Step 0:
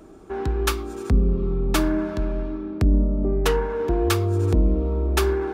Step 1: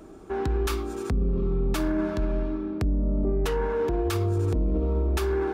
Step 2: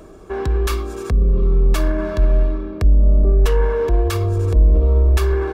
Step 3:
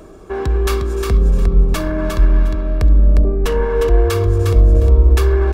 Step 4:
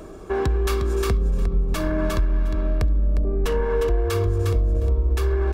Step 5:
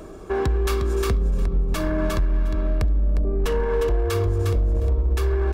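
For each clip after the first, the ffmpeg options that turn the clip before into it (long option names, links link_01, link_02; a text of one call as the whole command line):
ffmpeg -i in.wav -af "alimiter=limit=-18.5dB:level=0:latency=1:release=11" out.wav
ffmpeg -i in.wav -af "aecho=1:1:1.8:0.42,asubboost=boost=3.5:cutoff=63,areverse,acompressor=mode=upward:threshold=-40dB:ratio=2.5,areverse,volume=5dB" out.wav
ffmpeg -i in.wav -af "aecho=1:1:356|712|1068:0.562|0.107|0.0203,volume=2dB" out.wav
ffmpeg -i in.wav -af "acompressor=threshold=-18dB:ratio=5" out.wav
ffmpeg -i in.wav -af "asoftclip=type=hard:threshold=-15dB" out.wav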